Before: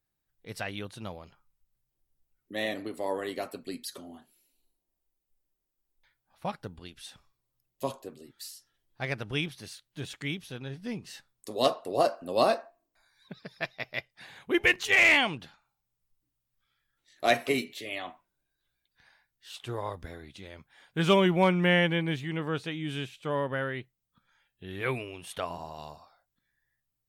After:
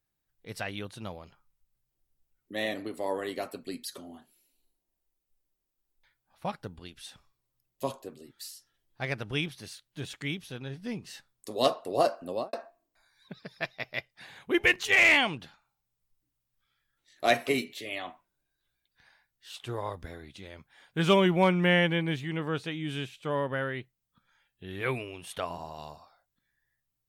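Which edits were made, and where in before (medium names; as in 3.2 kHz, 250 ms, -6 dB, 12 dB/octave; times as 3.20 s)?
12.24–12.53 s: studio fade out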